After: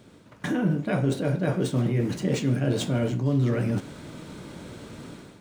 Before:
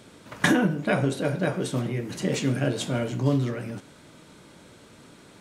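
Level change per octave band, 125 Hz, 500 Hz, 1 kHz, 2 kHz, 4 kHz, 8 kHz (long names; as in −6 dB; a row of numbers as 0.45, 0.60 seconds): +3.0, −0.5, −4.0, −7.0, −3.5, −4.0 decibels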